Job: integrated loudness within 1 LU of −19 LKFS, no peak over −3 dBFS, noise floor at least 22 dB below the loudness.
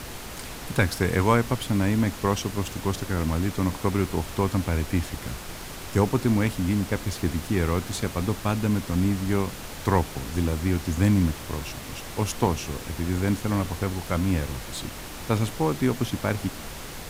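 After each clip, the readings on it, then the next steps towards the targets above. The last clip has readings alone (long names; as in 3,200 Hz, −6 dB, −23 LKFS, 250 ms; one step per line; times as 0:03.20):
background noise floor −38 dBFS; target noise floor −49 dBFS; integrated loudness −26.5 LKFS; sample peak −6.5 dBFS; target loudness −19.0 LKFS
→ noise reduction from a noise print 11 dB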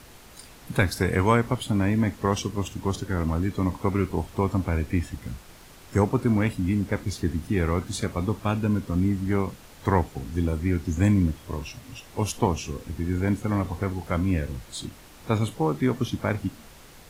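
background noise floor −49 dBFS; integrated loudness −26.5 LKFS; sample peak −7.0 dBFS; target loudness −19.0 LKFS
→ level +7.5 dB
brickwall limiter −3 dBFS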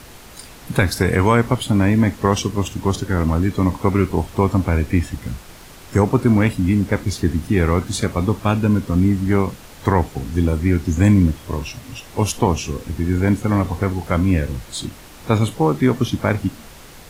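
integrated loudness −19.0 LKFS; sample peak −3.0 dBFS; background noise floor −41 dBFS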